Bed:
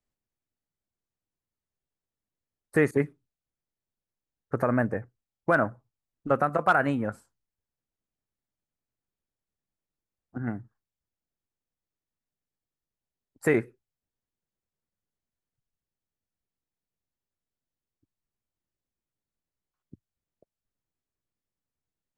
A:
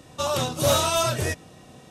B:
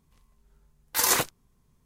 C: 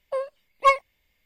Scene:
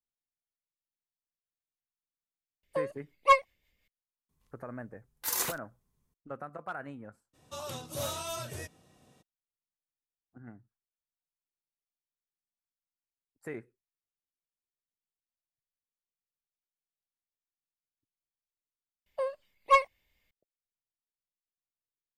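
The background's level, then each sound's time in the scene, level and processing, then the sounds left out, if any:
bed -17.5 dB
2.63 s: add C -2.5 dB + rotary cabinet horn 5.5 Hz
4.29 s: add B -11.5 dB + treble shelf 9.9 kHz +7.5 dB
7.33 s: add A -15.5 dB, fades 0.02 s + treble shelf 11 kHz +8 dB
19.06 s: replace with C -4.5 dB

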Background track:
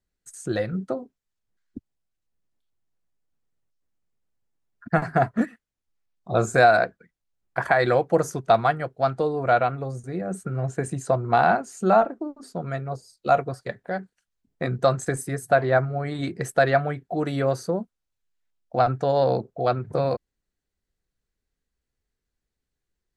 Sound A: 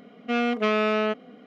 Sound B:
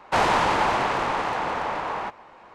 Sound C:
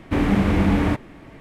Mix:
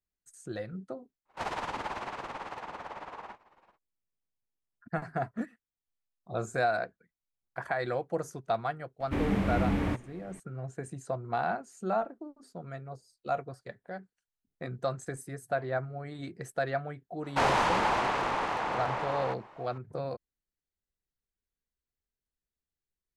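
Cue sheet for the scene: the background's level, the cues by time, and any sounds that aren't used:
background track -12 dB
1.25 s: add B -12 dB, fades 0.10 s + tremolo 18 Hz, depth 69%
9.00 s: add C -10 dB
17.24 s: add B -5.5 dB
not used: A

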